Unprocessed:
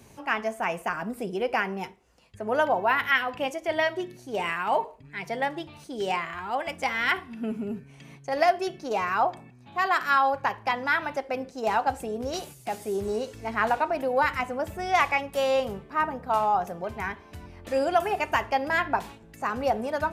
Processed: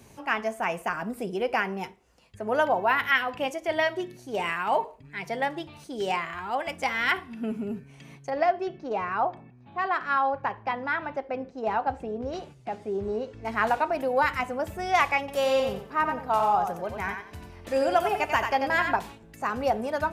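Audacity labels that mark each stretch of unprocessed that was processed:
8.300000	13.450000	tape spacing loss at 10 kHz 25 dB
15.190000	18.960000	thinning echo 91 ms, feedback 24%, level -5.5 dB

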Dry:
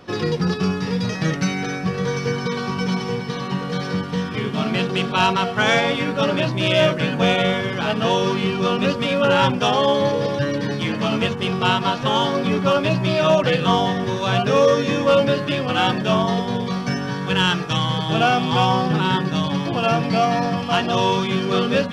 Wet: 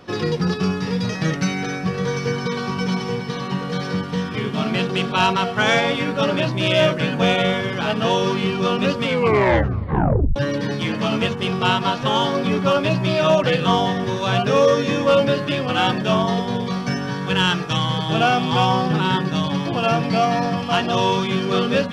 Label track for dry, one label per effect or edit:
9.020000	9.020000	tape stop 1.34 s

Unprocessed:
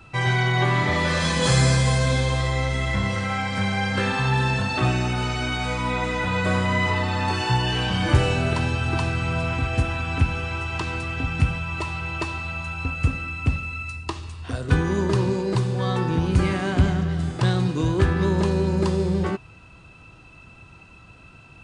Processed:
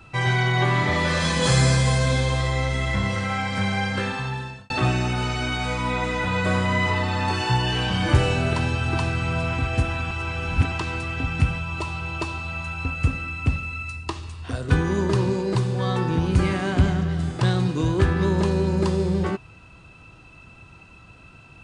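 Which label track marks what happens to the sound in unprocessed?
3.780000	4.700000	fade out
10.110000	10.720000	reverse
11.610000	12.520000	peaking EQ 1.9 kHz -6 dB 0.48 oct

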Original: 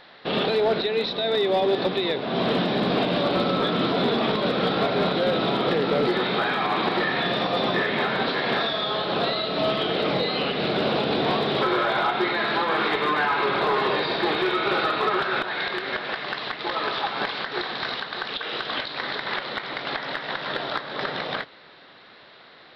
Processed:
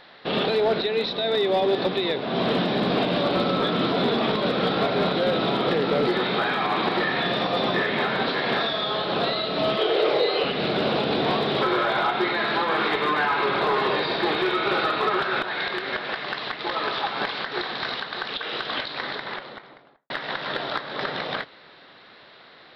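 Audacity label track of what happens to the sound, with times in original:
9.770000	10.440000	resonant low shelf 300 Hz -9.5 dB, Q 3
18.910000	20.100000	studio fade out

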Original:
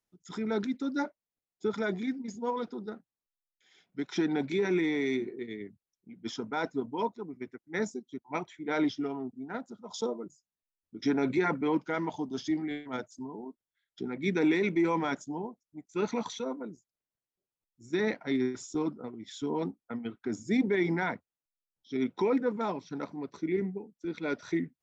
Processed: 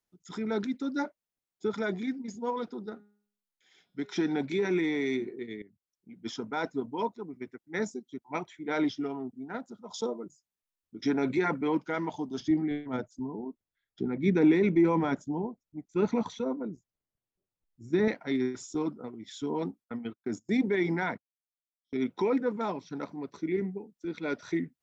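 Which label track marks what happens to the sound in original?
2.890000	4.400000	de-hum 206.3 Hz, notches 31
5.620000	6.140000	fade in, from -15 dB
12.400000	18.080000	tilt EQ -2.5 dB/octave
19.840000	22.090000	gate -43 dBFS, range -29 dB

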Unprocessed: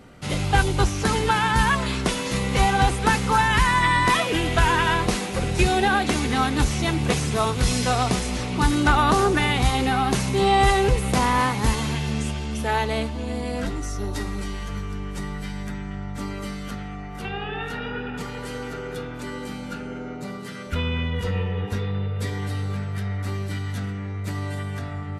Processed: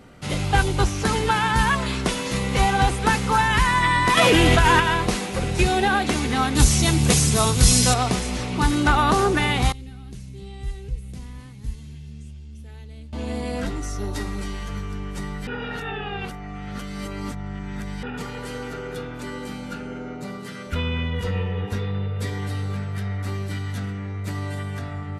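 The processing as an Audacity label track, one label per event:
4.170000	4.800000	level flattener amount 100%
6.550000	7.940000	tone controls bass +6 dB, treble +13 dB
9.720000	13.130000	amplifier tone stack bass-middle-treble 10-0-1
15.470000	18.030000	reverse

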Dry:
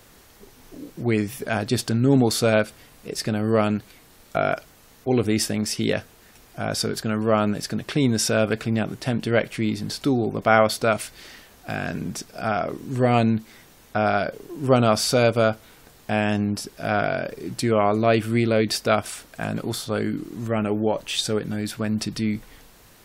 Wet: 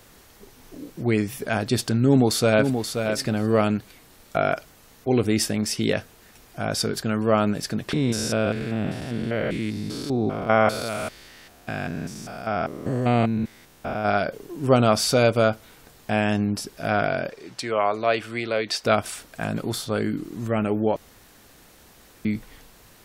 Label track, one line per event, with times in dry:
2.050000	3.090000	echo throw 530 ms, feedback 10%, level -6.5 dB
7.930000	14.090000	spectrogram pixelated in time every 200 ms
17.290000	18.840000	three-band isolator lows -14 dB, under 470 Hz, highs -13 dB, over 7.6 kHz
20.960000	22.250000	room tone

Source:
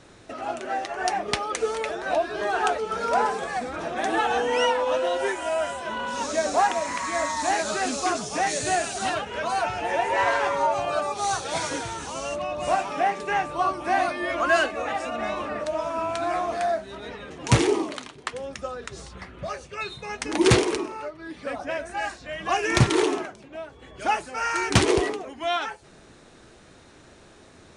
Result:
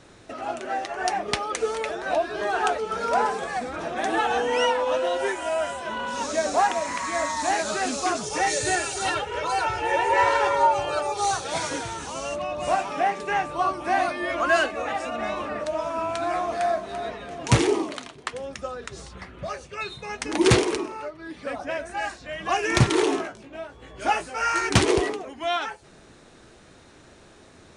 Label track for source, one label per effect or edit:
8.230000	11.310000	comb 2.2 ms, depth 77%
16.250000	16.760000	echo throw 340 ms, feedback 45%, level -9 dB
23.050000	24.690000	doubling 18 ms -3.5 dB

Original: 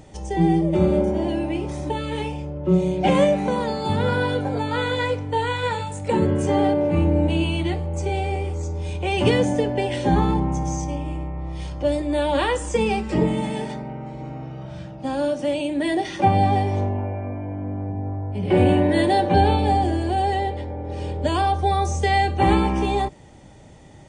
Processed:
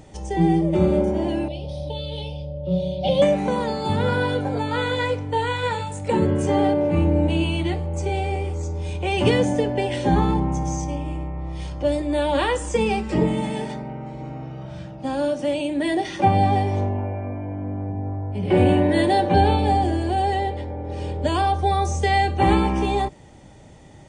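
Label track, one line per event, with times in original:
1.480000	3.220000	FFT filter 140 Hz 0 dB, 240 Hz -10 dB, 370 Hz -17 dB, 560 Hz +4 dB, 1.2 kHz -21 dB, 1.8 kHz -25 dB, 3.4 kHz +6 dB, 5 kHz +2 dB, 7.4 kHz -23 dB, 11 kHz 0 dB

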